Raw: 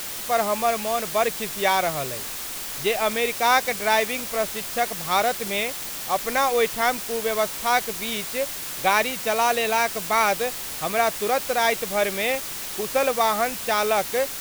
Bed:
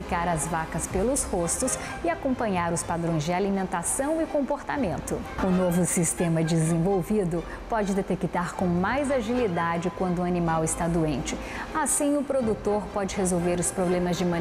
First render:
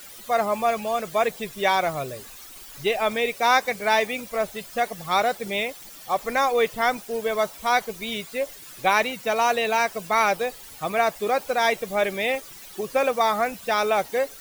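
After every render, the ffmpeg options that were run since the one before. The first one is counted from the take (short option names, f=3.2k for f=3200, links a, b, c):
-af "afftdn=nr=14:nf=-33"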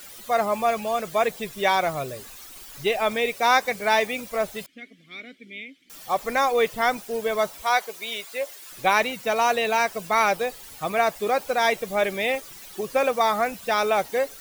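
-filter_complex "[0:a]asettb=1/sr,asplit=3[a][b][c];[a]atrim=end=4.664[d];[b]atrim=start=4.66:end=5.9,asetpts=PTS-STARTPTS,afade=t=in:d=0.004:c=qsin,afade=t=out:st=1.236:d=0.004:c=qsin,asplit=3[e][f][g];[e]bandpass=f=270:t=q:w=8,volume=0dB[h];[f]bandpass=f=2.29k:t=q:w=8,volume=-6dB[i];[g]bandpass=f=3.01k:t=q:w=8,volume=-9dB[j];[h][i][j]amix=inputs=3:normalize=0[k];[c]atrim=start=5.896[l];[d][k]acrossfade=d=0.004:c1=hsin:c2=qsin[m];[m][l]acrossfade=d=0.004:c1=qsin:c2=hsin,asettb=1/sr,asplit=3[n][o][p];[n]atrim=end=7.624[q];[o]atrim=start=7.62:end=8.72,asetpts=PTS-STARTPTS,afade=t=in:d=0.004:c=qsin,afade=t=out:st=1.096:d=0.004:c=qsin,highpass=480[r];[p]atrim=start=8.716[s];[q][r]acrossfade=d=0.004:c1=hsin:c2=qsin[t];[t][s]acrossfade=d=0.004:c1=qsin:c2=hsin"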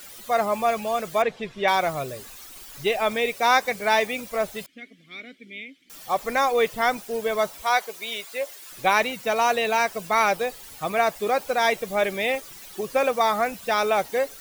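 -filter_complex "[0:a]asettb=1/sr,asplit=3[a][b][c];[a]atrim=end=1.224[d];[b]atrim=start=1.22:end=1.68,asetpts=PTS-STARTPTS,afade=t=in:d=0.004:c=qsin,afade=t=out:st=0.456:d=0.004:c=qsin,lowpass=3.6k[e];[c]atrim=start=1.676[f];[d][e]acrossfade=d=0.004:c1=hsin:c2=qsin[g];[g][f]acrossfade=d=0.004:c1=qsin:c2=hsin"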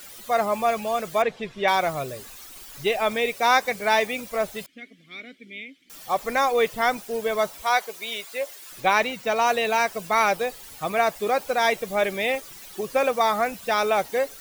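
-filter_complex "[0:a]asettb=1/sr,asplit=3[a][b][c];[a]atrim=end=8.804[d];[b]atrim=start=8.8:end=9.47,asetpts=PTS-STARTPTS,afade=t=in:d=0.004:c=qsin,afade=t=out:st=0.666:d=0.004:c=qsin,equalizer=f=12k:t=o:w=1:g=-5.5[e];[c]atrim=start=9.466[f];[d][e]acrossfade=d=0.004:c1=hsin:c2=qsin[g];[g][f]acrossfade=d=0.004:c1=qsin:c2=hsin"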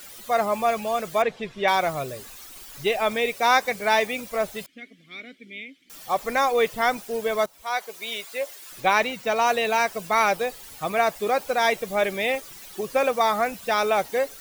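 -filter_complex "[0:a]asplit=2[a][b];[a]atrim=end=7.46,asetpts=PTS-STARTPTS,afade=t=out:st=7.456:d=0.004:c=hsin:silence=0.141254[c];[b]atrim=start=7.46,asetpts=PTS-STARTPTS,afade=t=in:d=0.62:silence=0.141254[d];[c][d]concat=n=2:v=0:a=1"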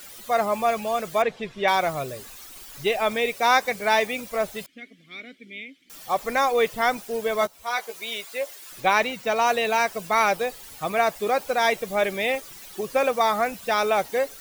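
-filter_complex "[0:a]asettb=1/sr,asplit=3[a][b][c];[a]atrim=end=7.404[d];[b]atrim=start=7.4:end=8.02,asetpts=PTS-STARTPTS,afade=t=in:d=0.004:c=qsin,afade=t=out:st=0.616:d=0.004:c=qsin,asplit=2[e][f];[f]adelay=13,volume=-4.5dB[g];[e][g]amix=inputs=2:normalize=0,atrim=end_sample=27342[h];[c]atrim=start=8.016[i];[d][h]acrossfade=d=0.004:c1=hsin:c2=qsin[j];[j][i]acrossfade=d=0.004:c1=qsin:c2=hsin"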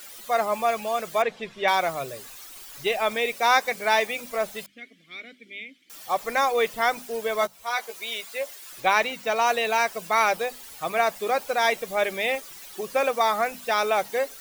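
-af "lowshelf=f=310:g=-7,bandreject=f=50:t=h:w=6,bandreject=f=100:t=h:w=6,bandreject=f=150:t=h:w=6,bandreject=f=200:t=h:w=6,bandreject=f=250:t=h:w=6"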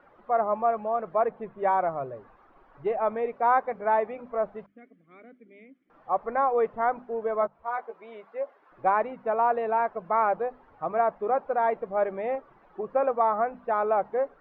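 -af "lowpass=f=1.2k:w=0.5412,lowpass=f=1.2k:w=1.3066,aemphasis=mode=production:type=75fm"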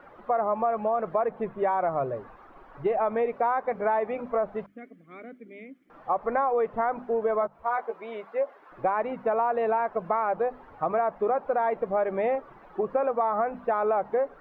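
-filter_complex "[0:a]asplit=2[a][b];[b]alimiter=limit=-22dB:level=0:latency=1:release=37,volume=2dB[c];[a][c]amix=inputs=2:normalize=0,acompressor=threshold=-22dB:ratio=6"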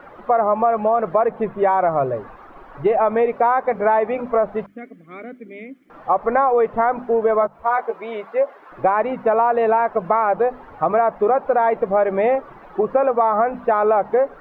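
-af "volume=8.5dB"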